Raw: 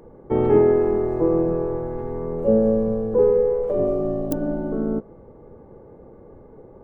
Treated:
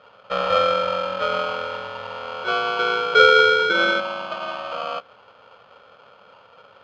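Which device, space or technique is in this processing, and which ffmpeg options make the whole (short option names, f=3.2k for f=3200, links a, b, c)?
ring modulator pedal into a guitar cabinet: -filter_complex "[0:a]asettb=1/sr,asplit=3[a][b][c];[a]atrim=end=2.794[d];[b]atrim=start=2.79:end=4,asetpts=PTS-STARTPTS,afade=t=in:d=0.004:c=qsin,afade=t=out:st=1.206:d=0.004:c=qsin,equalizer=f=540:t=o:w=0.71:g=12[e];[c]atrim=start=3.996[f];[d][e]acrossfade=d=0.004:c1=hsin:c2=qsin[g];[g][f]acrossfade=d=0.004:c1=qsin:c2=hsin,aeval=exprs='val(0)*sgn(sin(2*PI*930*n/s))':c=same,highpass=80,equalizer=f=110:t=q:w=4:g=5,equalizer=f=190:t=q:w=4:g=10,equalizer=f=350:t=q:w=4:g=-9,equalizer=f=550:t=q:w=4:g=7,equalizer=f=1.3k:t=q:w=4:g=4,equalizer=f=3.5k:t=q:w=4:g=4,lowpass=f=4k:w=0.5412,lowpass=f=4k:w=1.3066,volume=-7dB"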